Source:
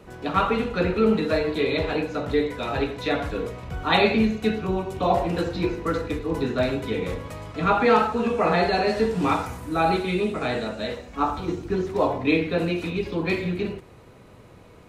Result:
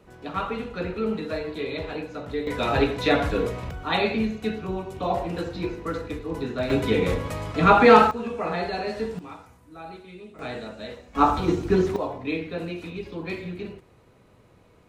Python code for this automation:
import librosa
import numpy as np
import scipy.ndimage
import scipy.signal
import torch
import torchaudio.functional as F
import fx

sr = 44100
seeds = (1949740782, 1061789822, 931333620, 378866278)

y = fx.gain(x, sr, db=fx.steps((0.0, -7.0), (2.47, 4.0), (3.71, -4.5), (6.7, 5.0), (8.11, -7.0), (9.19, -19.0), (10.39, -7.5), (11.15, 5.0), (11.96, -7.5)))